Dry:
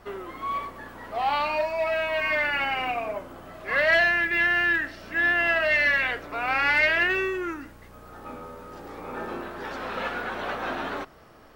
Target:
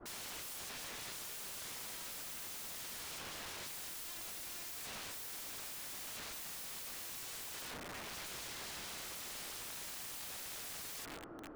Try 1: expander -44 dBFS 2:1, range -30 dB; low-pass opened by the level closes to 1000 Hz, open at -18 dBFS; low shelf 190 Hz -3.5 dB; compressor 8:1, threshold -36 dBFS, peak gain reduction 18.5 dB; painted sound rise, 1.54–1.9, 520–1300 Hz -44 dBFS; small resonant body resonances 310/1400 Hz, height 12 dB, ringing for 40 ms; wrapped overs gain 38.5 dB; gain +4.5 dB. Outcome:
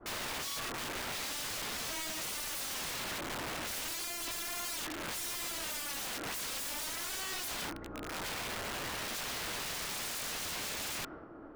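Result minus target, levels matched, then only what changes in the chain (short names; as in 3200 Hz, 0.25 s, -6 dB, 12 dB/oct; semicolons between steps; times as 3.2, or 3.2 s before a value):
wrapped overs: distortion -15 dB
change: wrapped overs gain 46 dB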